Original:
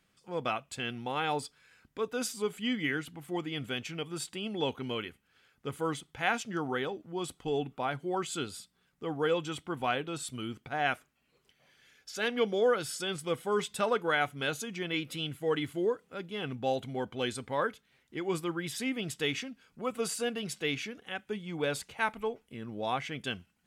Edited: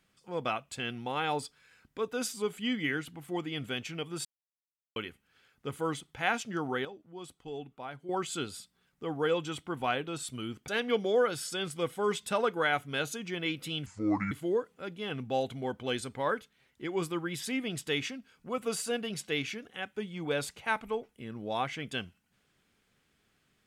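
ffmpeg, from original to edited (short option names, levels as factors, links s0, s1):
-filter_complex "[0:a]asplit=8[s0][s1][s2][s3][s4][s5][s6][s7];[s0]atrim=end=4.25,asetpts=PTS-STARTPTS,afade=t=out:st=4.246:d=0.004:c=hsin[s8];[s1]atrim=start=4.25:end=4.96,asetpts=PTS-STARTPTS,volume=0[s9];[s2]atrim=start=4.96:end=6.852,asetpts=PTS-STARTPTS,afade=t=in:d=0.004:c=hsin[s10];[s3]atrim=start=6.848:end=8.092,asetpts=PTS-STARTPTS,volume=0.355[s11];[s4]atrim=start=8.088:end=10.682[s12];[s5]atrim=start=12.158:end=15.344[s13];[s6]atrim=start=15.34:end=15.64,asetpts=PTS-STARTPTS,asetrate=29106,aresample=44100,atrim=end_sample=20045,asetpts=PTS-STARTPTS[s14];[s7]atrim=start=15.636[s15];[s8][s9][s10]concat=n=3:v=0:a=1[s16];[s16][s11]acrossfade=d=0.004:c1=hsin:c2=hsin[s17];[s17][s12]acrossfade=d=0.004:c1=hsin:c2=hsin[s18];[s18][s13]acrossfade=d=0.004:c1=hsin:c2=hsin[s19];[s19][s14]acrossfade=d=0.004:c1=hsin:c2=hsin[s20];[s20][s15]acrossfade=d=0.004:c1=hsin:c2=hsin"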